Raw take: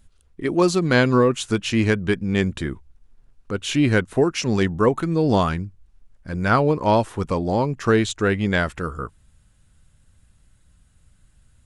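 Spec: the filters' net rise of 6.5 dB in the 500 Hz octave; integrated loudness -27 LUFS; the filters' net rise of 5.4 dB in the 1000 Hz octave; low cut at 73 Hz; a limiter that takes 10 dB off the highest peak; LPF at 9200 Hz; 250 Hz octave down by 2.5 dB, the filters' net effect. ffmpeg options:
-af "highpass=73,lowpass=9.2k,equalizer=f=250:t=o:g=-7.5,equalizer=f=500:t=o:g=9,equalizer=f=1k:t=o:g=4.5,volume=-6dB,alimiter=limit=-14.5dB:level=0:latency=1"

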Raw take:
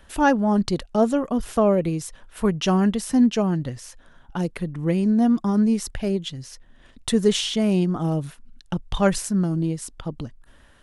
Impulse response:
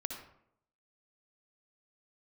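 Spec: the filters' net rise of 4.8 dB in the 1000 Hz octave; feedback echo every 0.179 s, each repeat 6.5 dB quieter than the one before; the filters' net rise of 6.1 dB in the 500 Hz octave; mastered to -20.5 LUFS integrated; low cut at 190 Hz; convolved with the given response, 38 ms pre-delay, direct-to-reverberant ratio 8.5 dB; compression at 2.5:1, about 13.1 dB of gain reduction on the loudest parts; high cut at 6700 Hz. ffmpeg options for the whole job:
-filter_complex "[0:a]highpass=190,lowpass=6.7k,equalizer=f=500:t=o:g=7,equalizer=f=1k:t=o:g=3.5,acompressor=threshold=-29dB:ratio=2.5,aecho=1:1:179|358|537|716|895|1074:0.473|0.222|0.105|0.0491|0.0231|0.0109,asplit=2[a][b];[1:a]atrim=start_sample=2205,adelay=38[c];[b][c]afir=irnorm=-1:irlink=0,volume=-9dB[d];[a][d]amix=inputs=2:normalize=0,volume=8dB"

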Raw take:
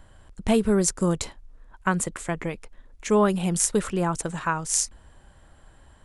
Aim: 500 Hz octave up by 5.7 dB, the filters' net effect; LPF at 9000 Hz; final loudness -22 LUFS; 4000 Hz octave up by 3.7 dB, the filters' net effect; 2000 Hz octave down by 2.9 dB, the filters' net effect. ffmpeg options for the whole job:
-af "lowpass=9k,equalizer=f=500:t=o:g=7.5,equalizer=f=2k:t=o:g=-6.5,equalizer=f=4k:t=o:g=7,volume=0.5dB"

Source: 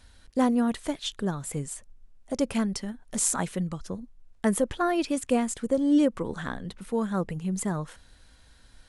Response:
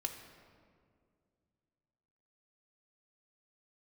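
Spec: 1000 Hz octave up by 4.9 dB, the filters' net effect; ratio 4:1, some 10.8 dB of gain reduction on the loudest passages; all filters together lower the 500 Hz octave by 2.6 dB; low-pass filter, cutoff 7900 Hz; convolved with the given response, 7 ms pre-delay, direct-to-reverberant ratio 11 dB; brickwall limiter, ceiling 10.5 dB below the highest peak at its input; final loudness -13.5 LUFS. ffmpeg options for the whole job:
-filter_complex "[0:a]lowpass=7.9k,equalizer=f=500:t=o:g=-5.5,equalizer=f=1k:t=o:g=8.5,acompressor=threshold=-32dB:ratio=4,alimiter=level_in=3dB:limit=-24dB:level=0:latency=1,volume=-3dB,asplit=2[a][b];[1:a]atrim=start_sample=2205,adelay=7[c];[b][c]afir=irnorm=-1:irlink=0,volume=-11dB[d];[a][d]amix=inputs=2:normalize=0,volume=24dB"

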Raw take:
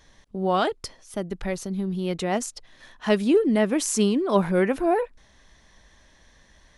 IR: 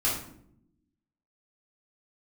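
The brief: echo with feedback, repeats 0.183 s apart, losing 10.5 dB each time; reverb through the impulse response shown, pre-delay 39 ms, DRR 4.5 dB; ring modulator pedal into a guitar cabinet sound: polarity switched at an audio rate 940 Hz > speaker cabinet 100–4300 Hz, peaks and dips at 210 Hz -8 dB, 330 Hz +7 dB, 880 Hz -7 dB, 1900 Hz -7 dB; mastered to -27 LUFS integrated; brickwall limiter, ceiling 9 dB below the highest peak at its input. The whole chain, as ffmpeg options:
-filter_complex "[0:a]alimiter=limit=-16.5dB:level=0:latency=1,aecho=1:1:183|366|549:0.299|0.0896|0.0269,asplit=2[a][b];[1:a]atrim=start_sample=2205,adelay=39[c];[b][c]afir=irnorm=-1:irlink=0,volume=-14dB[d];[a][d]amix=inputs=2:normalize=0,aeval=exprs='val(0)*sgn(sin(2*PI*940*n/s))':c=same,highpass=100,equalizer=f=210:t=q:w=4:g=-8,equalizer=f=330:t=q:w=4:g=7,equalizer=f=880:t=q:w=4:g=-7,equalizer=f=1.9k:t=q:w=4:g=-7,lowpass=f=4.3k:w=0.5412,lowpass=f=4.3k:w=1.3066,volume=-1.5dB"

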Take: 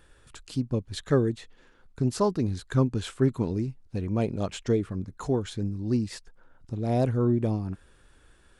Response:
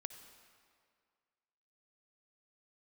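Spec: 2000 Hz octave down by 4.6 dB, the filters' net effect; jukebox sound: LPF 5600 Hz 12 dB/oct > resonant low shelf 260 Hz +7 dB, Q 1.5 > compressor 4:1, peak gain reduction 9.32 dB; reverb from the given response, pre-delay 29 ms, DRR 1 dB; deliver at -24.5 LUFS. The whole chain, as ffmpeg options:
-filter_complex "[0:a]equalizer=f=2k:t=o:g=-6,asplit=2[a][b];[1:a]atrim=start_sample=2205,adelay=29[c];[b][c]afir=irnorm=-1:irlink=0,volume=2.5dB[d];[a][d]amix=inputs=2:normalize=0,lowpass=5.6k,lowshelf=f=260:t=q:w=1.5:g=7,acompressor=threshold=-19dB:ratio=4,volume=0.5dB"

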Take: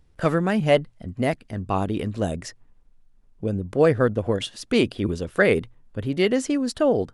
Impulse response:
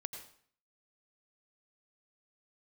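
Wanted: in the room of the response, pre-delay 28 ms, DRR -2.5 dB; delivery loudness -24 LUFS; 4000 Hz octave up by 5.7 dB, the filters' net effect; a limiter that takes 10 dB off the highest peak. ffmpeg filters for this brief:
-filter_complex "[0:a]equalizer=f=4k:t=o:g=8,alimiter=limit=-13.5dB:level=0:latency=1,asplit=2[a][b];[1:a]atrim=start_sample=2205,adelay=28[c];[b][c]afir=irnorm=-1:irlink=0,volume=4.5dB[d];[a][d]amix=inputs=2:normalize=0,volume=-2.5dB"

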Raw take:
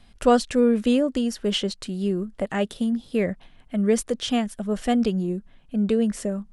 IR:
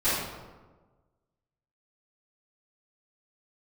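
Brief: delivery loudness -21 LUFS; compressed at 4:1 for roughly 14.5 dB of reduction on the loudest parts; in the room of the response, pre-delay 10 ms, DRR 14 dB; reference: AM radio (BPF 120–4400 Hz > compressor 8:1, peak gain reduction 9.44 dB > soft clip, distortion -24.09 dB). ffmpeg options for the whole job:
-filter_complex "[0:a]acompressor=threshold=-30dB:ratio=4,asplit=2[a][b];[1:a]atrim=start_sample=2205,adelay=10[c];[b][c]afir=irnorm=-1:irlink=0,volume=-27.5dB[d];[a][d]amix=inputs=2:normalize=0,highpass=120,lowpass=4.4k,acompressor=threshold=-34dB:ratio=8,asoftclip=threshold=-27dB,volume=19dB"

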